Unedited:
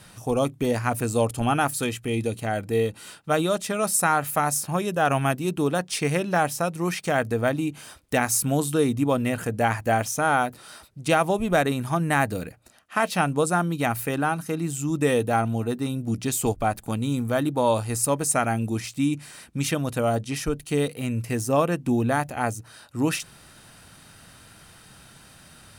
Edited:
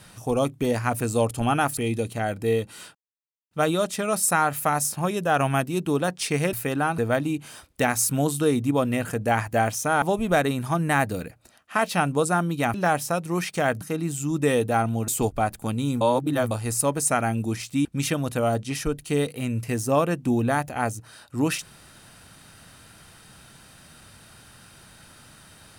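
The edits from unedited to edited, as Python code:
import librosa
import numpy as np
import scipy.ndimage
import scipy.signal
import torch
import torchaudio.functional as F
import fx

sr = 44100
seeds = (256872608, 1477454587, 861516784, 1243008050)

y = fx.edit(x, sr, fx.cut(start_s=1.77, length_s=0.27),
    fx.insert_silence(at_s=3.22, length_s=0.56),
    fx.swap(start_s=6.24, length_s=1.07, other_s=13.95, other_length_s=0.45),
    fx.cut(start_s=10.35, length_s=0.88),
    fx.cut(start_s=15.67, length_s=0.65),
    fx.reverse_span(start_s=17.25, length_s=0.5),
    fx.cut(start_s=19.09, length_s=0.37), tone=tone)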